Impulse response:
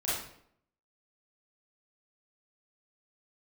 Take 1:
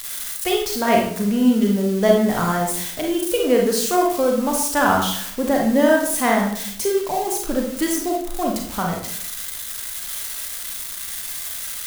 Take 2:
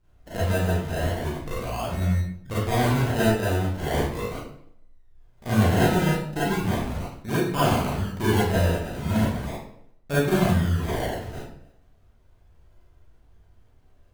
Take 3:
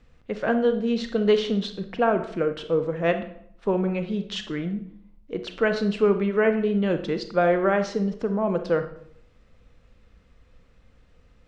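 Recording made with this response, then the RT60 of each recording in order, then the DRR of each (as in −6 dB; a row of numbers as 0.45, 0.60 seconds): 2; 0.70, 0.70, 0.70 seconds; −0.5, −10.0, 8.0 decibels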